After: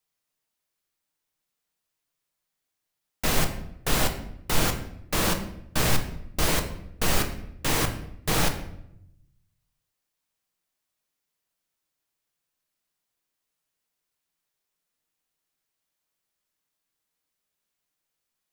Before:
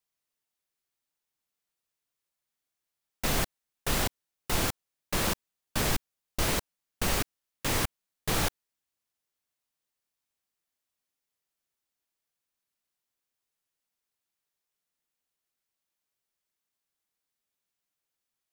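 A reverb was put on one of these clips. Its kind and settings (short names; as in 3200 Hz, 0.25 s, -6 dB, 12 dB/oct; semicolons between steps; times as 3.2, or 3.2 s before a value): shoebox room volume 200 m³, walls mixed, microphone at 0.55 m; gain +3 dB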